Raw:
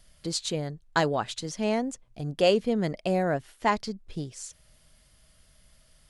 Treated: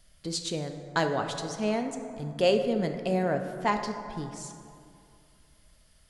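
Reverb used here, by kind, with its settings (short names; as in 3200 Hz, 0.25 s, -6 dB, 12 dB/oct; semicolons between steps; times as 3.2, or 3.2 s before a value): plate-style reverb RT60 2.5 s, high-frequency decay 0.4×, DRR 5.5 dB; gain -2.5 dB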